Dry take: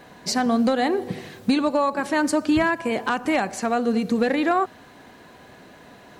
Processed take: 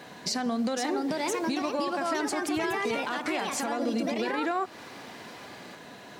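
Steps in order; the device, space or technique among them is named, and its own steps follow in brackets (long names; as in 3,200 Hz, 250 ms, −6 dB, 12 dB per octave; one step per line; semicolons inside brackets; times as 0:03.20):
delay with pitch and tempo change per echo 545 ms, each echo +3 semitones, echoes 2
broadcast voice chain (high-pass filter 110 Hz 12 dB per octave; de-essing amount 40%; downward compressor 4 to 1, threshold −26 dBFS, peak gain reduction 10.5 dB; parametric band 4,700 Hz +4.5 dB 2 octaves; brickwall limiter −19.5 dBFS, peak gain reduction 7.5 dB)
0:00.77–0:01.62: high-pass filter 180 Hz 12 dB per octave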